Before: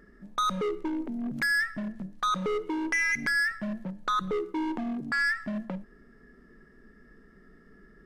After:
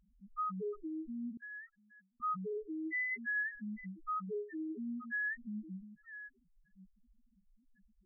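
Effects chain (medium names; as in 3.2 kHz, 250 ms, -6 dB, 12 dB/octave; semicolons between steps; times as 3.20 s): chunks repeated in reverse 571 ms, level -12.5 dB; loudest bins only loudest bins 1; 1.37–2.20 s: pre-emphasis filter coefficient 0.97; trim -4 dB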